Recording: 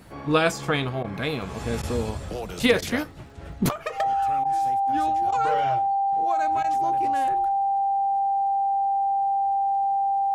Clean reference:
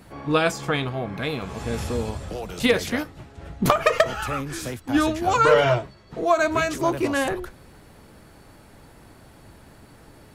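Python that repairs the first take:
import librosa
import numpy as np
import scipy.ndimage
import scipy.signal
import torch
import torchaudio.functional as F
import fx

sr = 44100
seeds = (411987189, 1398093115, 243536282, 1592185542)

y = fx.fix_declick_ar(x, sr, threshold=6.5)
y = fx.notch(y, sr, hz=790.0, q=30.0)
y = fx.fix_interpolate(y, sr, at_s=(1.03, 1.82, 2.81, 4.44, 5.31, 6.63), length_ms=11.0)
y = fx.fix_level(y, sr, at_s=3.69, step_db=12.0)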